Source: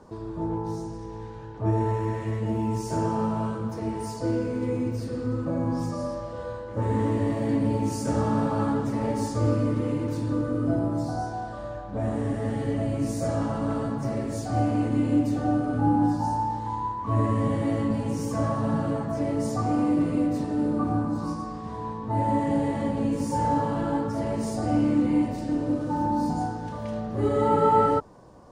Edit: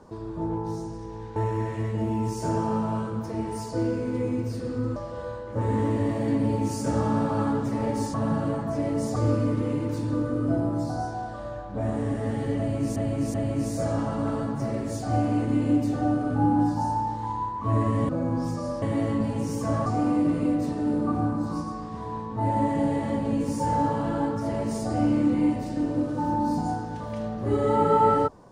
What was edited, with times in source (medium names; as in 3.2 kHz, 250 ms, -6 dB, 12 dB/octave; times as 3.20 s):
1.36–1.84 s: delete
5.44–6.17 s: move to 17.52 s
12.77–13.15 s: loop, 3 plays
18.56–19.58 s: move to 9.35 s